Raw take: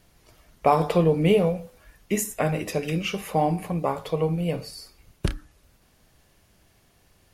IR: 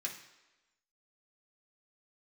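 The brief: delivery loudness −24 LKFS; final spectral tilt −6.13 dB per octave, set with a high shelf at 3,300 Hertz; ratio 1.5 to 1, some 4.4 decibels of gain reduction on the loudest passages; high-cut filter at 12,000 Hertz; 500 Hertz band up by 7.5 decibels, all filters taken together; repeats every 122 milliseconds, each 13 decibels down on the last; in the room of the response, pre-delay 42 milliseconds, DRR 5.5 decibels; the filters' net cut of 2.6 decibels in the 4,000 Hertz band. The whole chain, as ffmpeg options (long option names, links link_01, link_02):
-filter_complex "[0:a]lowpass=12000,equalizer=frequency=500:width_type=o:gain=8.5,highshelf=frequency=3300:gain=3.5,equalizer=frequency=4000:width_type=o:gain=-7,acompressor=threshold=-21dB:ratio=1.5,aecho=1:1:122|244|366:0.224|0.0493|0.0108,asplit=2[link_01][link_02];[1:a]atrim=start_sample=2205,adelay=42[link_03];[link_02][link_03]afir=irnorm=-1:irlink=0,volume=-6dB[link_04];[link_01][link_04]amix=inputs=2:normalize=0,volume=-1.5dB"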